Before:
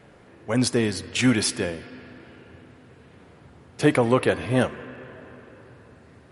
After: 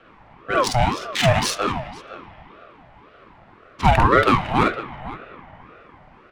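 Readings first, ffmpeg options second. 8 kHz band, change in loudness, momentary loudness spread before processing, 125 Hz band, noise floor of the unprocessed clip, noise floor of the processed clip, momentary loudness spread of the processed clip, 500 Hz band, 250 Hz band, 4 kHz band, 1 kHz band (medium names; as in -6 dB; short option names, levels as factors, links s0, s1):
-0.5 dB, +3.5 dB, 19 LU, +4.5 dB, -52 dBFS, -50 dBFS, 20 LU, +1.5 dB, -2.5 dB, +3.5 dB, +13.5 dB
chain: -filter_complex "[0:a]highpass=f=210:w=0.5412,highpass=f=210:w=1.3066,asplit=2[s0][s1];[s1]aecho=0:1:47|49|73|507:0.668|0.473|0.266|0.188[s2];[s0][s2]amix=inputs=2:normalize=0,adynamicsmooth=sensitivity=2:basefreq=2800,aeval=exprs='val(0)*sin(2*PI*650*n/s+650*0.45/1.9*sin(2*PI*1.9*n/s))':c=same,volume=1.88"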